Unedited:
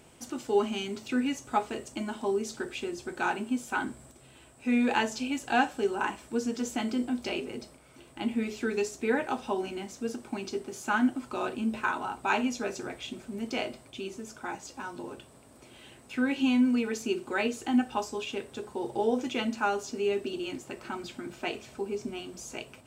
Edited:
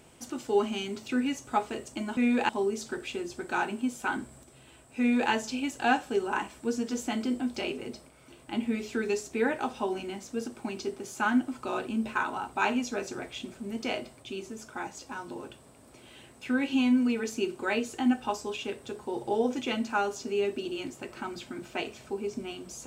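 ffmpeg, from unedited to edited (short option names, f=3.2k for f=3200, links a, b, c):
-filter_complex "[0:a]asplit=3[a][b][c];[a]atrim=end=2.172[d];[b]atrim=start=4.668:end=4.992[e];[c]atrim=start=2.168[f];[d][e]acrossfade=d=0.004:c1=hsin:c2=hsin[g];[g][f]acrossfade=d=0.004:c1=hsin:c2=hsin"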